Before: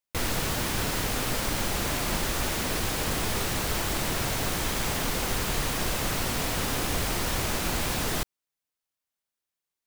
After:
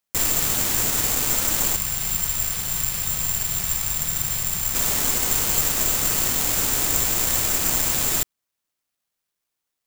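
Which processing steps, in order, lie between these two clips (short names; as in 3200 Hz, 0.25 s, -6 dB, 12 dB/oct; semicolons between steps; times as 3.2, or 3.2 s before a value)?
spectral gain 1.76–4.74, 210–8000 Hz -25 dB; careless resampling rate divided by 6×, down none, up zero stuff; gain -1.5 dB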